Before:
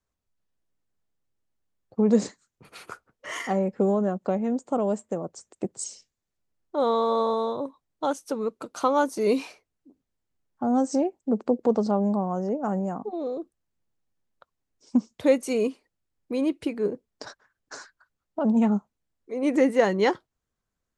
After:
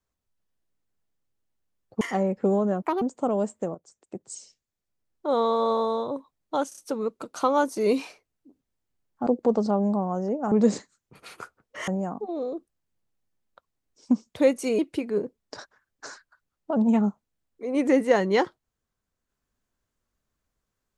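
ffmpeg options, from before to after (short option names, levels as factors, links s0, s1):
-filter_complex "[0:a]asplit=12[s0][s1][s2][s3][s4][s5][s6][s7][s8][s9][s10][s11];[s0]atrim=end=2.012[s12];[s1]atrim=start=3.368:end=4.184[s13];[s2]atrim=start=4.18:end=4.51,asetpts=PTS-STARTPTS,asetrate=74088,aresample=44100,atrim=end_sample=8662,asetpts=PTS-STARTPTS[s14];[s3]atrim=start=4.506:end=5.24,asetpts=PTS-STARTPTS,afade=t=out:st=0.73:d=0.004:c=hsin:silence=0.237137[s15];[s4]atrim=start=5.24:end=8.212,asetpts=PTS-STARTPTS,afade=t=in:d=1.63:silence=0.237137[s16];[s5]atrim=start=8.178:end=8.212[s17];[s6]atrim=start=8.178:end=8.212[s18];[s7]atrim=start=8.178:end=10.672[s19];[s8]atrim=start=11.468:end=12.722[s20];[s9]atrim=start=2.008:end=3.372[s21];[s10]atrim=start=12.718:end=15.632[s22];[s11]atrim=start=16.468[s23];[s12][s13]acrossfade=d=0.004:c1=hsin:c2=hsin[s24];[s24][s14]acrossfade=d=0.004:c1=hsin:c2=hsin[s25];[s15][s16]concat=n=2:v=0:a=1[s26];[s25][s26]acrossfade=d=0.004:c1=hsin:c2=hsin[s27];[s27][s17]acrossfade=d=0.004:c1=hsin:c2=hsin[s28];[s28][s18]acrossfade=d=0.004:c1=hsin:c2=hsin[s29];[s29][s19]acrossfade=d=0.004:c1=hsin:c2=hsin[s30];[s30][s20]acrossfade=d=0.004:c1=hsin:c2=hsin[s31];[s31][s21]acrossfade=d=0.004:c1=hsin:c2=hsin[s32];[s32][s22]acrossfade=d=0.004:c1=hsin:c2=hsin[s33];[s33][s23]acrossfade=d=0.004:c1=hsin:c2=hsin"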